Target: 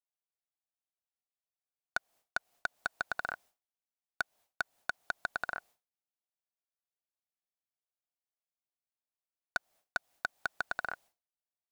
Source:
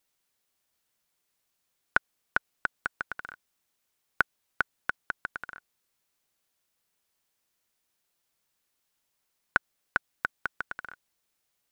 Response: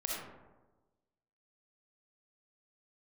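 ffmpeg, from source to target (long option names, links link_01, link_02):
-af "equalizer=frequency=700:width_type=o:width=0.8:gain=13,acompressor=threshold=-30dB:ratio=2.5,agate=range=-33dB:threshold=-57dB:ratio=3:detection=peak,asoftclip=type=tanh:threshold=-26dB,volume=5.5dB"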